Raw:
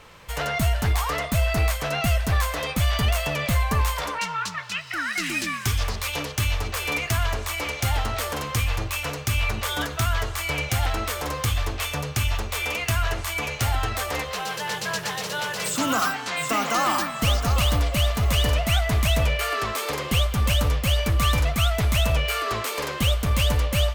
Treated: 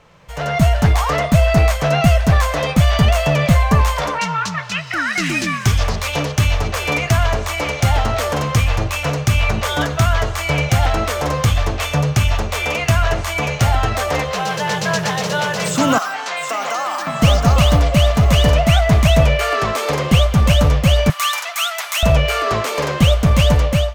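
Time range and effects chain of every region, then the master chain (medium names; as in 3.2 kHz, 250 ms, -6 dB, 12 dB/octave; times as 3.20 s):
15.98–17.07 s: high-pass 540 Hz + compression 4:1, threshold -27 dBFS
21.10–22.03 s: high-pass 960 Hz 24 dB/octave + treble shelf 7.6 kHz +9.5 dB
whole clip: treble shelf 4.9 kHz -10 dB; level rider gain up to 12 dB; fifteen-band graphic EQ 160 Hz +9 dB, 630 Hz +5 dB, 6.3 kHz +5 dB; trim -3.5 dB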